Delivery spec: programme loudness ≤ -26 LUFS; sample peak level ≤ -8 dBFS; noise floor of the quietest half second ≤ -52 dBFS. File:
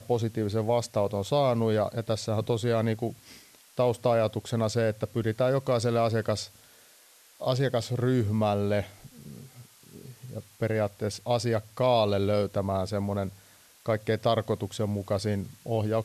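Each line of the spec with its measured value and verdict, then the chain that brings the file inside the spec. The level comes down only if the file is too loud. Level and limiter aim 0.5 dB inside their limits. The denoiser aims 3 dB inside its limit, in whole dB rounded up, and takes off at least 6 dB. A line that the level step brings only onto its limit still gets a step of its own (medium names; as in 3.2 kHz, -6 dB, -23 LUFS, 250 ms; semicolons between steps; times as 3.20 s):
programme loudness -28.0 LUFS: pass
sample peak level -11.5 dBFS: pass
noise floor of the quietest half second -57 dBFS: pass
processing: none needed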